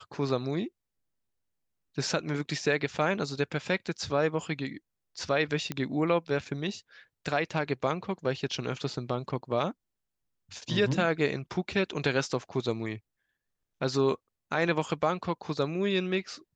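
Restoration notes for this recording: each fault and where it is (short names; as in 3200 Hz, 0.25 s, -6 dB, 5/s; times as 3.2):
5.72 pop -17 dBFS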